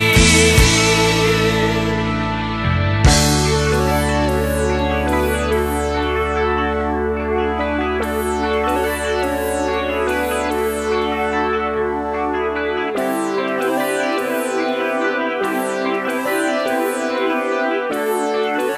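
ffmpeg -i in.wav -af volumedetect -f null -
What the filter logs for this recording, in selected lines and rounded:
mean_volume: -17.5 dB
max_volume: -2.5 dB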